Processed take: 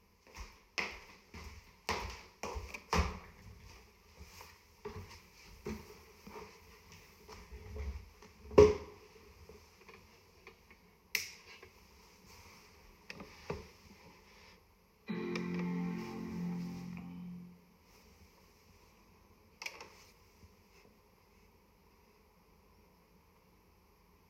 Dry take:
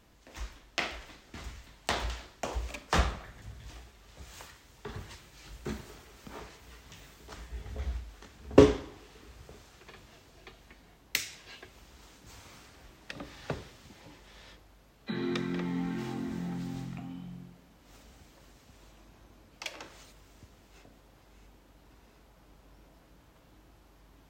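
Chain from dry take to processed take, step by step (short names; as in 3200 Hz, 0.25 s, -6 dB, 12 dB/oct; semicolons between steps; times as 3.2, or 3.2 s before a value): ripple EQ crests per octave 0.83, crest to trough 13 dB; gain -7.5 dB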